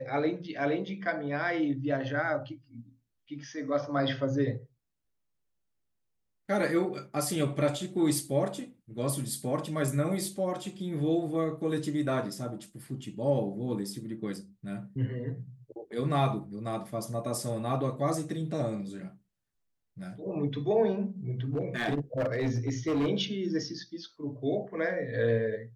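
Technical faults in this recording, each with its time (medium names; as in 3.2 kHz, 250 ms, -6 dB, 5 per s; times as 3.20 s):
21.53–23.09 s: clipped -24.5 dBFS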